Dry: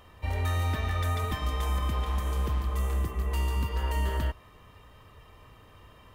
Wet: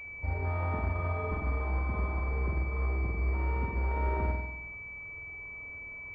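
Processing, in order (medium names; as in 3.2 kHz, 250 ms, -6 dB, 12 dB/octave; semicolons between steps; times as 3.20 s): flutter echo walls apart 8.3 m, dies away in 0.96 s; class-D stage that switches slowly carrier 2.3 kHz; trim -3.5 dB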